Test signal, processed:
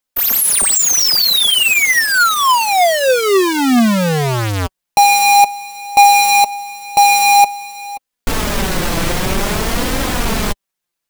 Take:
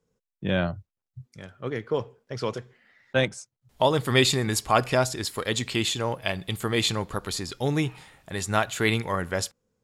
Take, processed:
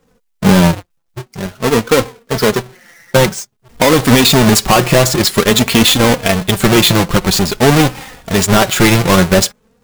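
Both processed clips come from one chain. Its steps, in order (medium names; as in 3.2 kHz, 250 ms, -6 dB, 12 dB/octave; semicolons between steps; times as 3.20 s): square wave that keeps the level; flange 0.5 Hz, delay 3.7 ms, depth 2.3 ms, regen +28%; loudness maximiser +19 dB; trim -1 dB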